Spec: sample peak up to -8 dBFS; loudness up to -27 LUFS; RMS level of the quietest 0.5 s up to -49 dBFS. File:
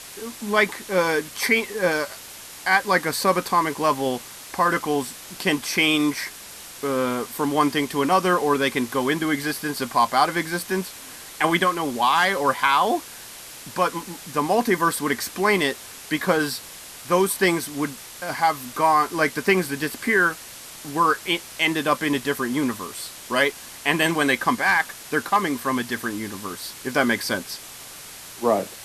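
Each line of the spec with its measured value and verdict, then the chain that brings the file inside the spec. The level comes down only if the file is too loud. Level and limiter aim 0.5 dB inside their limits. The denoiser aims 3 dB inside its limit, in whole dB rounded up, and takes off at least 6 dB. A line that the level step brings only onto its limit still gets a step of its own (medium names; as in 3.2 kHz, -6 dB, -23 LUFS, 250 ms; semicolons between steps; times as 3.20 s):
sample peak -5.0 dBFS: fail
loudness -22.5 LUFS: fail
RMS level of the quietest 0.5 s -40 dBFS: fail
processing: noise reduction 7 dB, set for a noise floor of -40 dBFS; trim -5 dB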